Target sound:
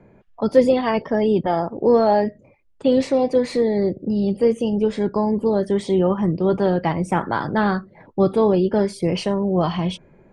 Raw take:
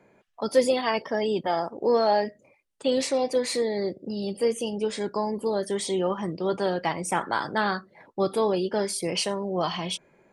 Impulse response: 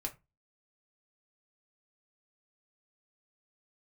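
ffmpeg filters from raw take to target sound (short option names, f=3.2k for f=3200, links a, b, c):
-af "aemphasis=mode=reproduction:type=riaa,volume=3.5dB"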